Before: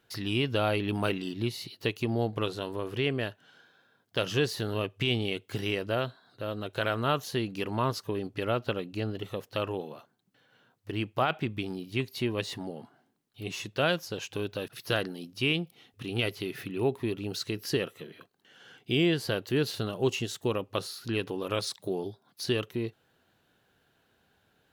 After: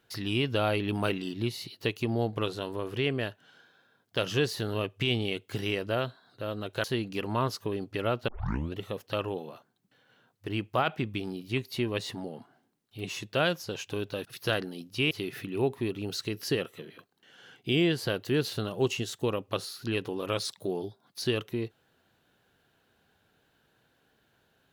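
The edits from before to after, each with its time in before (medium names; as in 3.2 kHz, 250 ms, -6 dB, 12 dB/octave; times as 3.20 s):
6.84–7.27 s: delete
8.71 s: tape start 0.48 s
15.54–16.33 s: delete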